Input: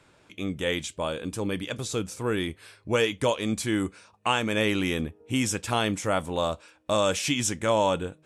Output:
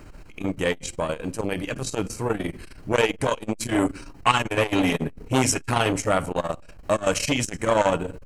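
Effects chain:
0:03.60–0:06.02: comb filter 7.3 ms, depth 77%
background noise brown −46 dBFS
Butterworth band-reject 3,500 Hz, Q 6.7
rectangular room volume 830 cubic metres, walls furnished, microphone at 0.49 metres
saturating transformer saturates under 1,200 Hz
level +6 dB

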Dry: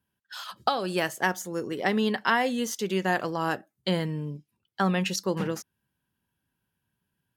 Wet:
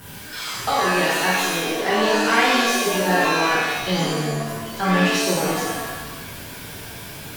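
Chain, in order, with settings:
converter with a step at zero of −34.5 dBFS
reverb with rising layers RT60 1 s, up +7 semitones, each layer −2 dB, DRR −7 dB
level −3.5 dB

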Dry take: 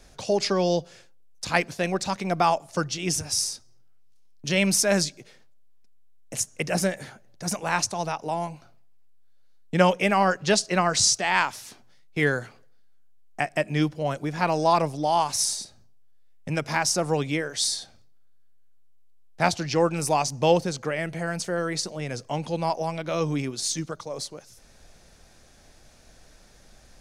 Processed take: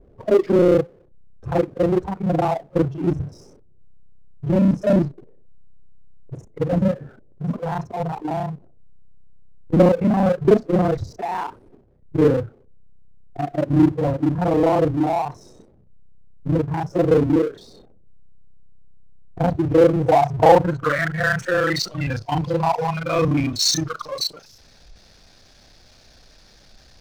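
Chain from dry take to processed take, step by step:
reversed piece by piece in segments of 31 ms
noise reduction from a noise print of the clip's start 18 dB
in parallel at −9.5 dB: slack as between gear wheels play −37.5 dBFS
on the sum: low-pass filter sweep 420 Hz → 4,700 Hz, 0:19.79–0:22.17
power curve on the samples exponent 0.7

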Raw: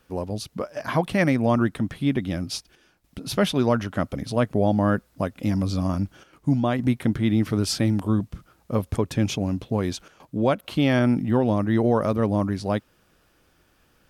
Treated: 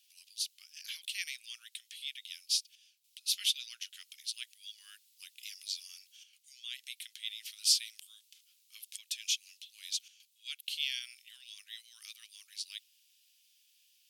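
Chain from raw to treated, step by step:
Butterworth high-pass 2,800 Hz 36 dB per octave
level +1.5 dB

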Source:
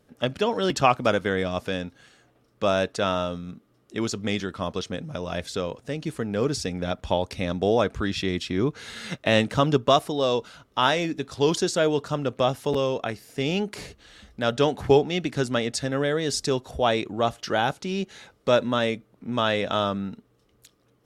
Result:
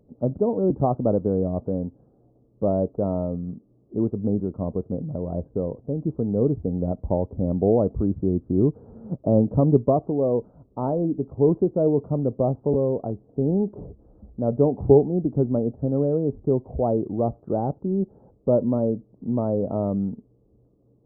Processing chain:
Gaussian smoothing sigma 14 samples
level +6 dB

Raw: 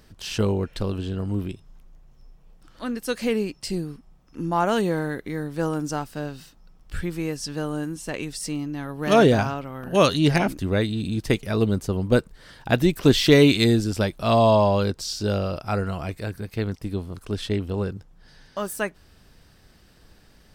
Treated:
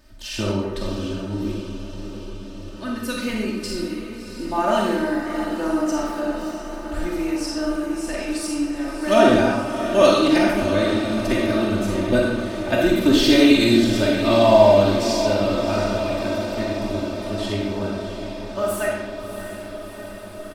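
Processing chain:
comb filter 3.3 ms, depth 99%
feedback delay with all-pass diffusion 671 ms, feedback 72%, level −10 dB
comb and all-pass reverb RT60 0.97 s, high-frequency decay 0.85×, pre-delay 5 ms, DRR −2.5 dB
level −4.5 dB

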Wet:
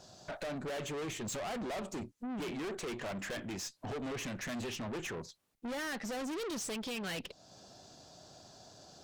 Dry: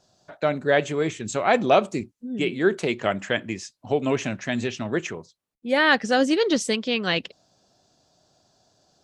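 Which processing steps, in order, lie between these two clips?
downward compressor 2 to 1, threshold −42 dBFS, peak gain reduction 15.5 dB
tube saturation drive 46 dB, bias 0.4
level +9 dB

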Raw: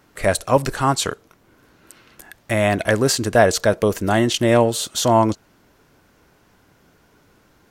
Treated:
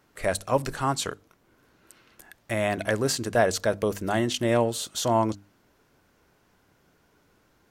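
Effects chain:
mains-hum notches 50/100/150/200/250/300 Hz
level −7.5 dB

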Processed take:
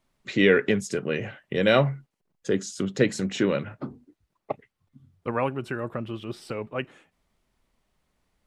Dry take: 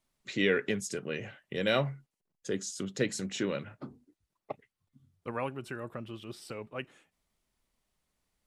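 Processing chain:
high-shelf EQ 4,000 Hz −10 dB
level +9 dB

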